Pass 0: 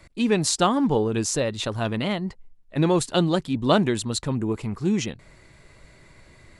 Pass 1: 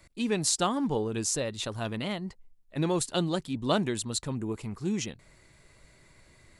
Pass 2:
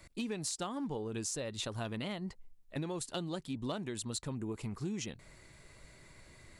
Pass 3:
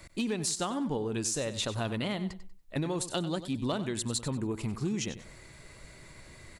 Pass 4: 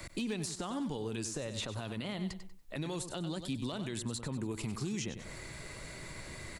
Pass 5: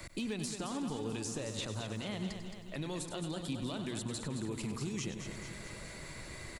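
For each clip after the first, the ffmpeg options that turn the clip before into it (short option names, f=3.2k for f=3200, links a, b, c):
-af "highshelf=f=5.6k:g=8.5,volume=-7.5dB"
-af "acompressor=threshold=-36dB:ratio=8,volume=28.5dB,asoftclip=hard,volume=-28.5dB,volume=1dB"
-af "aecho=1:1:95|190|285:0.224|0.0582|0.0151,volume=6dB"
-filter_complex "[0:a]acrossover=split=120|2500[a][b][c];[a]acompressor=threshold=-53dB:ratio=4[d];[b]acompressor=threshold=-43dB:ratio=4[e];[c]acompressor=threshold=-49dB:ratio=4[f];[d][e][f]amix=inputs=3:normalize=0,alimiter=level_in=9.5dB:limit=-24dB:level=0:latency=1:release=26,volume=-9.5dB,volume=6dB"
-af "aecho=1:1:219|438|657|876|1095|1314|1533:0.398|0.235|0.139|0.0818|0.0482|0.0285|0.0168,volume=-1.5dB"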